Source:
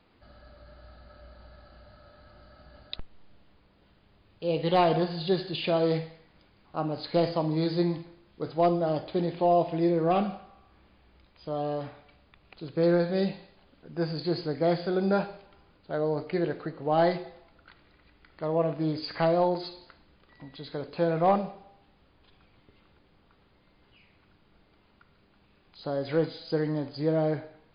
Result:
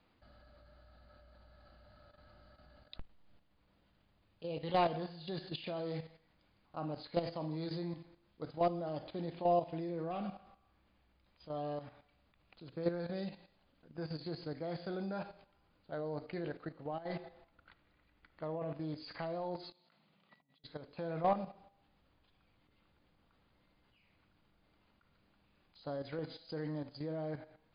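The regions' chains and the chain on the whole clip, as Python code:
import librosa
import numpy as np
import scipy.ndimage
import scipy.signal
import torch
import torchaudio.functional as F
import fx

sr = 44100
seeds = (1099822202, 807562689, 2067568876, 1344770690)

y = fx.chain(x, sr, fx.lowpass(hz=4100.0, slope=12),
    fx.over_compress(threshold_db=-26.0, ratio=-0.5), at=(16.84, 18.75))
y = fx.chain(y, sr, fx.over_compress(threshold_db=-57.0, ratio=-1.0),
    fx.cabinet(low_hz=150.0, low_slope=24, high_hz=4300.0, hz=(170.0, 310.0, 490.0, 960.0, 1600.0), db=(4, -10, -5, -3, -8)), at=(19.72, 20.64))
y = fx.peak_eq(y, sr, hz=400.0, db=-6.0, octaves=0.26)
y = fx.level_steps(y, sr, step_db=11)
y = F.gain(torch.from_numpy(y), -6.0).numpy()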